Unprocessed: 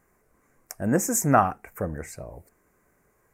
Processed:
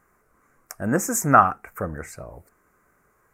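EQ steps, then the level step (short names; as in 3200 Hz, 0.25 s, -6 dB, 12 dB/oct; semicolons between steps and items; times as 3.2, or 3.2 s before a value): bell 1300 Hz +9.5 dB 0.59 oct; 0.0 dB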